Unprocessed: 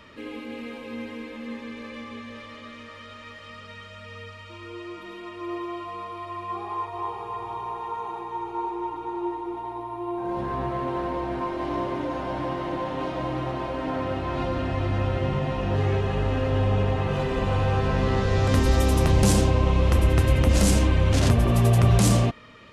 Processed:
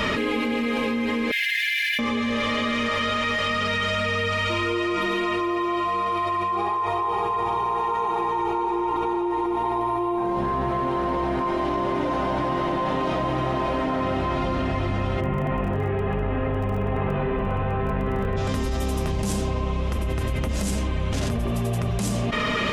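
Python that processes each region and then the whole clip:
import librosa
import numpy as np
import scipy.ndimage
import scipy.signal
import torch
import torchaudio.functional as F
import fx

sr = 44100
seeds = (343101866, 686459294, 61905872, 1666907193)

y = fx.chain(x, sr, fx.brickwall_highpass(low_hz=1600.0),
    fx.resample_linear(factor=3), at=(1.31, 1.99))
y = fx.lowpass(y, sr, hz=2500.0, slope=24, at=(15.2, 18.36), fade=0.02)
y = fx.dmg_crackle(y, sr, seeds[0], per_s=14.0, level_db=-32.0, at=(15.2, 18.36), fade=0.02)
y = fx.notch(y, sr, hz=4300.0, q=28.0)
y = y + 0.34 * np.pad(y, (int(4.8 * sr / 1000.0), 0))[:len(y)]
y = fx.env_flatten(y, sr, amount_pct=100)
y = F.gain(torch.from_numpy(y), -9.0).numpy()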